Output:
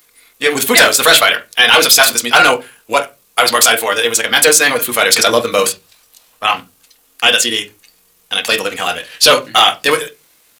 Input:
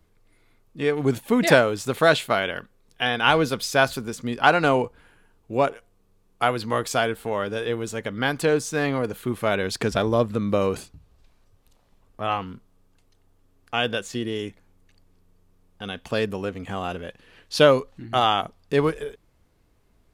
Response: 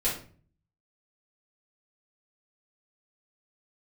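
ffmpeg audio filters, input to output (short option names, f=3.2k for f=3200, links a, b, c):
-filter_complex "[0:a]aderivative,asplit=2[a][b];[1:a]atrim=start_sample=2205,lowpass=4.2k[c];[b][c]afir=irnorm=-1:irlink=0,volume=-9.5dB[d];[a][d]amix=inputs=2:normalize=0,atempo=1.9,apsyclip=28.5dB,volume=-1.5dB"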